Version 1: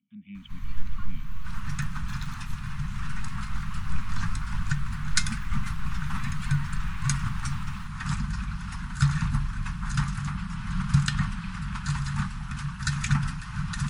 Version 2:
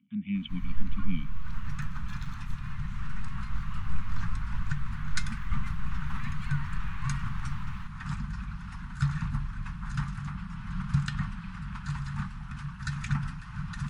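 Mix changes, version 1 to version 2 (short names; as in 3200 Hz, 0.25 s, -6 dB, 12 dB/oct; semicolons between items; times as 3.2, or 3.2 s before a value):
speech +11.5 dB; second sound -5.0 dB; master: add high shelf 4500 Hz -11 dB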